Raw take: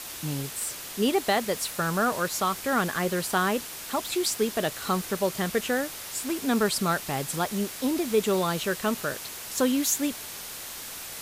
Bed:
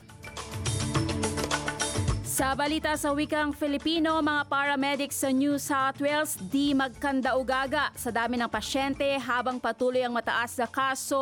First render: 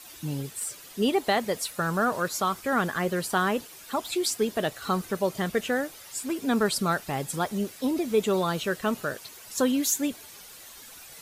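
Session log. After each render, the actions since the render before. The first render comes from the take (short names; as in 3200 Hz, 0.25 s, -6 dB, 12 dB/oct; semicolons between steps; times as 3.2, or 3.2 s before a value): denoiser 11 dB, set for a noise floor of -39 dBFS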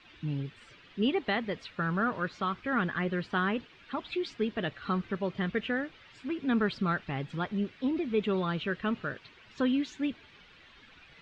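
LPF 3100 Hz 24 dB/oct; bell 680 Hz -9.5 dB 1.7 oct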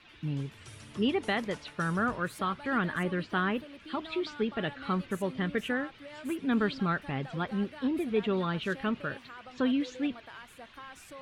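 add bed -20.5 dB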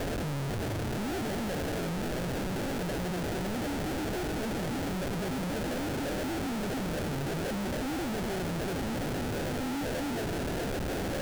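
infinite clipping; sample-rate reducer 1100 Hz, jitter 20%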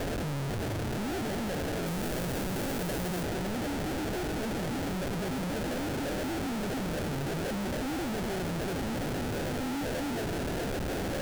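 1.86–3.24 high shelf 8000 Hz +8 dB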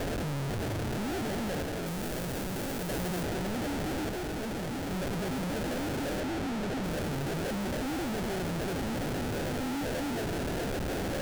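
1.63–2.9 G.711 law mismatch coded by A; 4.09–4.91 G.711 law mismatch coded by A; 6.2–6.84 high shelf 8300 Hz -8.5 dB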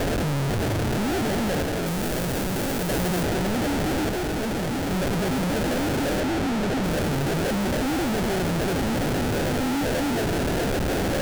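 gain +8.5 dB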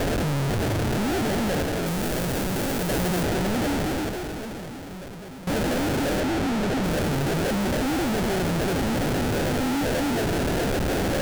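3.71–5.47 fade out quadratic, to -15.5 dB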